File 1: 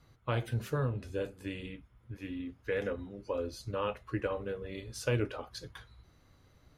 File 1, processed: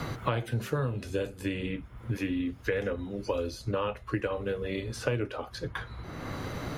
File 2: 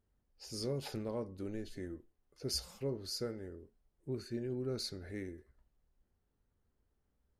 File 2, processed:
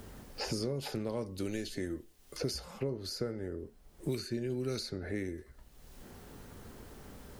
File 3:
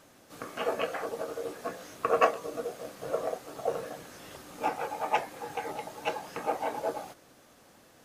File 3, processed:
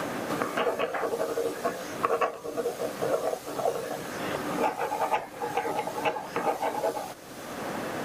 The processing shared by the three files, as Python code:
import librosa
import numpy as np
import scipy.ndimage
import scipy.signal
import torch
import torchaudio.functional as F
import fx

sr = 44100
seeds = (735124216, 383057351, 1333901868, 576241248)

y = fx.band_squash(x, sr, depth_pct=100)
y = y * librosa.db_to_amplitude(3.5)